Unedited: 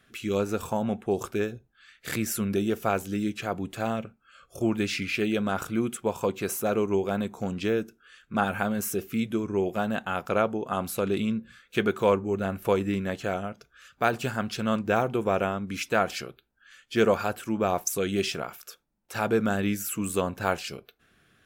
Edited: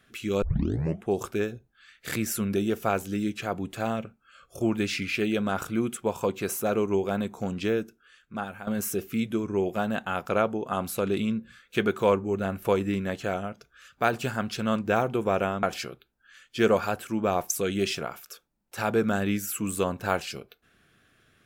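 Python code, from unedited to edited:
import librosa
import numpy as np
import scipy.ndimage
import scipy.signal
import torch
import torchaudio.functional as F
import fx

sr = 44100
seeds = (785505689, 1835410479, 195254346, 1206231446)

y = fx.edit(x, sr, fx.tape_start(start_s=0.42, length_s=0.62),
    fx.fade_out_to(start_s=7.71, length_s=0.96, floor_db=-15.0),
    fx.cut(start_s=15.63, length_s=0.37), tone=tone)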